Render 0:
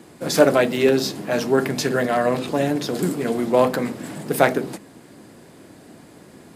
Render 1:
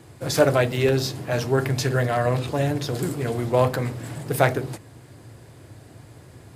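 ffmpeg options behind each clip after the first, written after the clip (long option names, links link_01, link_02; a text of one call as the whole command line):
ffmpeg -i in.wav -af "lowshelf=frequency=150:width_type=q:width=3:gain=9,volume=-2.5dB" out.wav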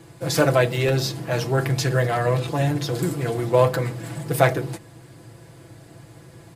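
ffmpeg -i in.wav -af "aecho=1:1:6:0.59" out.wav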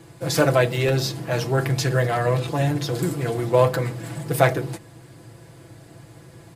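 ffmpeg -i in.wav -af anull out.wav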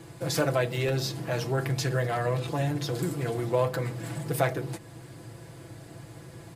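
ffmpeg -i in.wav -af "acompressor=threshold=-36dB:ratio=1.5" out.wav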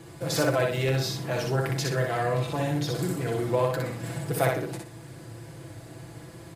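ffmpeg -i in.wav -af "aecho=1:1:61|122|183|244:0.708|0.198|0.0555|0.0155" out.wav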